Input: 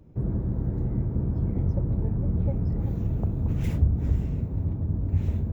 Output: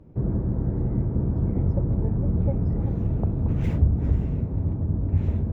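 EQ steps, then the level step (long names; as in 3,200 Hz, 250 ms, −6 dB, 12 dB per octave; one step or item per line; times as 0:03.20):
low-pass filter 1,600 Hz 6 dB per octave
low-shelf EQ 230 Hz −4 dB
+5.5 dB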